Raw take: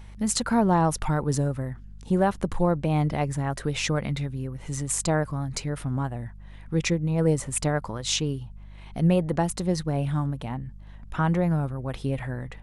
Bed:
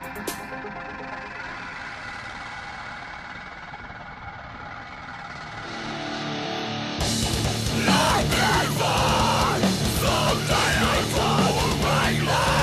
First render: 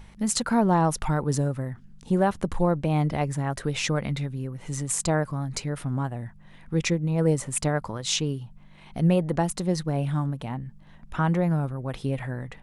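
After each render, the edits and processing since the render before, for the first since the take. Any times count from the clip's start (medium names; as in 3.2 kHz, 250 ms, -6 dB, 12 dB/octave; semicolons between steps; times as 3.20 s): de-hum 50 Hz, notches 2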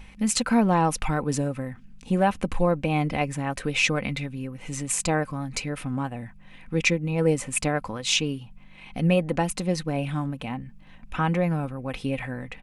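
peaking EQ 2.5 kHz +10.5 dB 0.48 oct; comb 3.9 ms, depth 39%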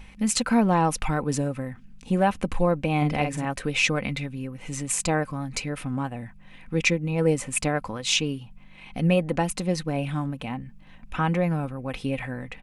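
2.97–3.45 s: doubling 47 ms -6 dB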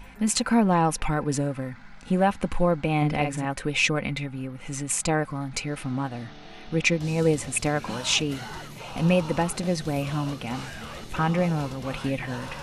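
add bed -17.5 dB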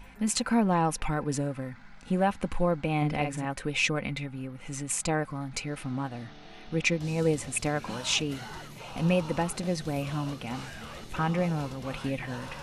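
trim -4 dB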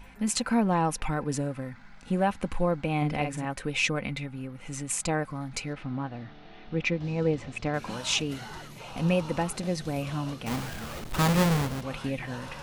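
5.73–7.74 s: distance through air 180 m; 10.46–11.81 s: square wave that keeps the level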